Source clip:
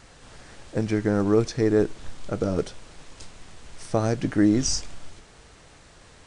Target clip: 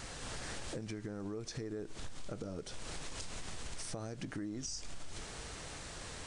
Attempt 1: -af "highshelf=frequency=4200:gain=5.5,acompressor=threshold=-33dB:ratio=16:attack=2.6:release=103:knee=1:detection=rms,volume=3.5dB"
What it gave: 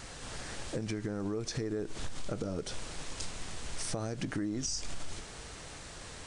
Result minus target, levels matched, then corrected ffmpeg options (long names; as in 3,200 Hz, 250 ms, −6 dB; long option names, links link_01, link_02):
downward compressor: peak gain reduction −6.5 dB
-af "highshelf=frequency=4200:gain=5.5,acompressor=threshold=-40dB:ratio=16:attack=2.6:release=103:knee=1:detection=rms,volume=3.5dB"